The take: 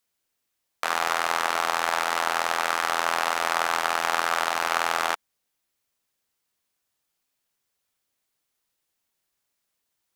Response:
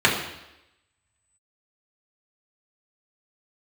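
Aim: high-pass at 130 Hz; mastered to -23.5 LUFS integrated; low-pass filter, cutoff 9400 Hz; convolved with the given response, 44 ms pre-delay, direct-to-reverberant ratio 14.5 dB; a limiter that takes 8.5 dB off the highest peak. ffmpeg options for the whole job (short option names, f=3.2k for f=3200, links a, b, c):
-filter_complex "[0:a]highpass=130,lowpass=9.4k,alimiter=limit=-13.5dB:level=0:latency=1,asplit=2[a][b];[1:a]atrim=start_sample=2205,adelay=44[c];[b][c]afir=irnorm=-1:irlink=0,volume=-35dB[d];[a][d]amix=inputs=2:normalize=0,volume=6.5dB"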